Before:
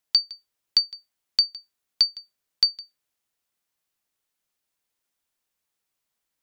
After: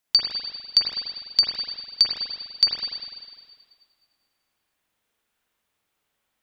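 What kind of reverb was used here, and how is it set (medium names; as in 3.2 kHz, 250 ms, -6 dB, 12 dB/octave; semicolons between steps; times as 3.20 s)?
spring tank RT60 1.8 s, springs 41/50 ms, chirp 60 ms, DRR -7 dB; trim +1.5 dB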